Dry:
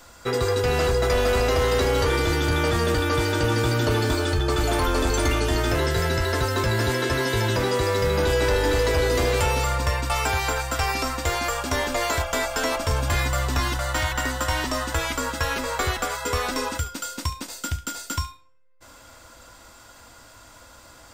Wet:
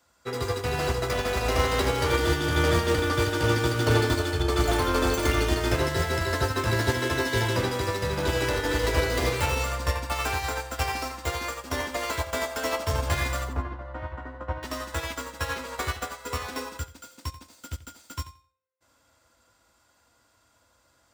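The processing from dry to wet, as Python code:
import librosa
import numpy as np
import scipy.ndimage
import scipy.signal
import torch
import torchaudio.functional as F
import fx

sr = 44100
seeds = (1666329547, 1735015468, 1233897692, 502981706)

p1 = fx.tracing_dist(x, sr, depth_ms=0.088)
p2 = fx.lowpass(p1, sr, hz=1100.0, slope=12, at=(13.44, 14.63))
p3 = 10.0 ** (-30.0 / 20.0) * np.tanh(p2 / 10.0 ** (-30.0 / 20.0))
p4 = p2 + (p3 * librosa.db_to_amplitude(-10.5))
p5 = scipy.signal.sosfilt(scipy.signal.butter(4, 52.0, 'highpass', fs=sr, output='sos'), p4)
p6 = p5 + fx.echo_feedback(p5, sr, ms=88, feedback_pct=23, wet_db=-6.5, dry=0)
y = fx.upward_expand(p6, sr, threshold_db=-31.0, expansion=2.5)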